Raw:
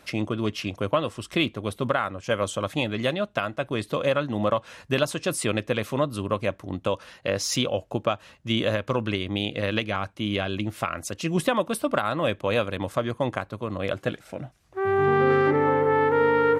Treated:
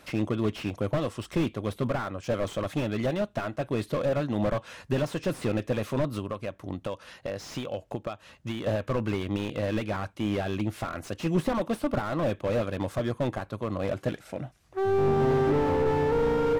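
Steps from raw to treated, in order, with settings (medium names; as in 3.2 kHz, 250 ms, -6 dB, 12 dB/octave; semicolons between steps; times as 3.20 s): 6.18–8.67 s: compression 6:1, threshold -29 dBFS, peak gain reduction 10.5 dB; slew-rate limiter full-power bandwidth 38 Hz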